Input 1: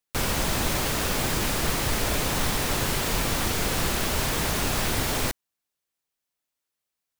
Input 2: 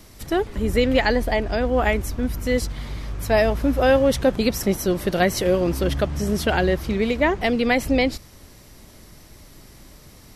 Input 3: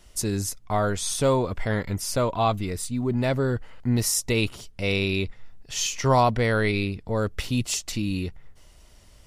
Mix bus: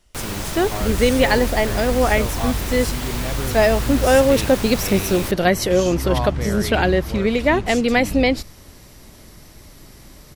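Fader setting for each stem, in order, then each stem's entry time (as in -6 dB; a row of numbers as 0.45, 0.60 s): -3.0, +2.5, -6.0 dB; 0.00, 0.25, 0.00 s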